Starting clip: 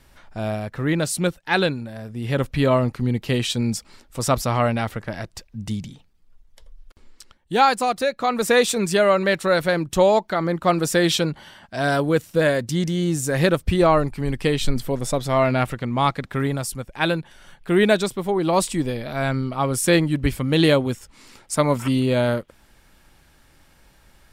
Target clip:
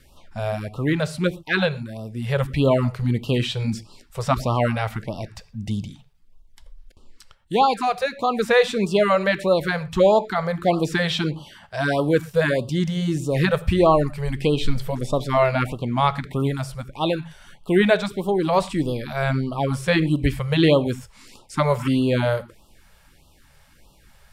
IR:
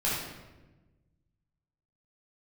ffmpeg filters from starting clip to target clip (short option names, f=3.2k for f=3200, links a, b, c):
-filter_complex "[0:a]acrossover=split=4100[a][b];[b]acompressor=threshold=-43dB:ratio=4:attack=1:release=60[c];[a][c]amix=inputs=2:normalize=0,asplit=2[d][e];[1:a]atrim=start_sample=2205,afade=t=out:st=0.18:d=0.01,atrim=end_sample=8379[f];[e][f]afir=irnorm=-1:irlink=0,volume=-22.5dB[g];[d][g]amix=inputs=2:normalize=0,afftfilt=real='re*(1-between(b*sr/1024,250*pow(1900/250,0.5+0.5*sin(2*PI*1.6*pts/sr))/1.41,250*pow(1900/250,0.5+0.5*sin(2*PI*1.6*pts/sr))*1.41))':imag='im*(1-between(b*sr/1024,250*pow(1900/250,0.5+0.5*sin(2*PI*1.6*pts/sr))/1.41,250*pow(1900/250,0.5+0.5*sin(2*PI*1.6*pts/sr))*1.41))':win_size=1024:overlap=0.75"